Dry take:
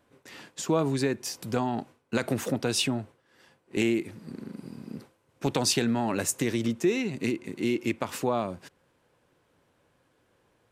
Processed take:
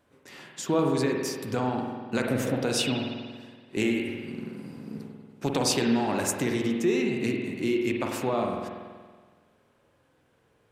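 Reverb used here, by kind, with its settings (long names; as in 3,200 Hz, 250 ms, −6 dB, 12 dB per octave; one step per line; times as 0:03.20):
spring reverb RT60 1.6 s, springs 47 ms, chirp 55 ms, DRR 1 dB
level −1 dB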